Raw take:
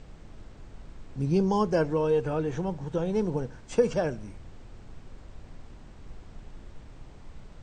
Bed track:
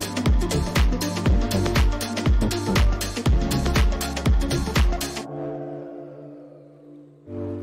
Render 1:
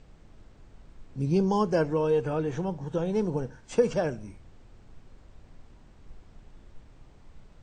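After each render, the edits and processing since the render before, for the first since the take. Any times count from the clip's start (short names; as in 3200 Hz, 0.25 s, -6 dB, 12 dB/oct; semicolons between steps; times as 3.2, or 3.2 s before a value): noise print and reduce 6 dB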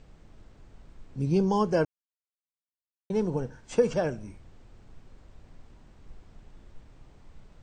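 1.85–3.1 mute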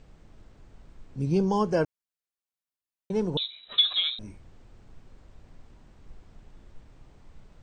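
3.37–4.19 inverted band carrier 3900 Hz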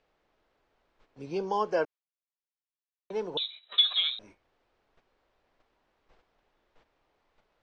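gate -43 dBFS, range -9 dB; three-band isolator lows -21 dB, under 380 Hz, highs -22 dB, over 5400 Hz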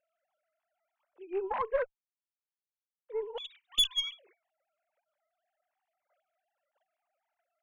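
sine-wave speech; tube stage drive 20 dB, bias 0.4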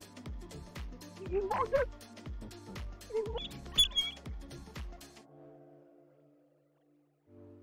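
add bed track -24.5 dB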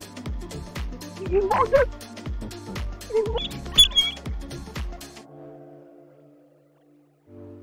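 gain +12 dB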